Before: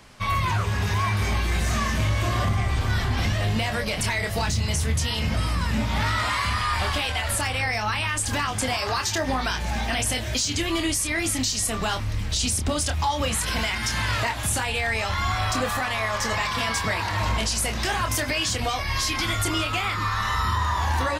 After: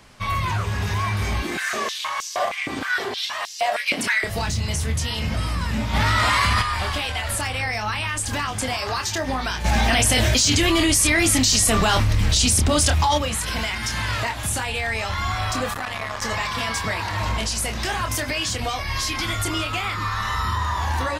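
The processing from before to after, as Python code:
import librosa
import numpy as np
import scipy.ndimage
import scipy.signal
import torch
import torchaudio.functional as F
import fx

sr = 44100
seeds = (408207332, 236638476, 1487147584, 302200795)

y = fx.filter_held_highpass(x, sr, hz=6.4, low_hz=270.0, high_hz=5700.0, at=(1.42, 4.24))
y = fx.env_flatten(y, sr, amount_pct=100, at=(5.93, 6.61), fade=0.02)
y = fx.env_flatten(y, sr, amount_pct=100, at=(9.64, 13.17), fade=0.02)
y = fx.transformer_sat(y, sr, knee_hz=750.0, at=(15.73, 16.22))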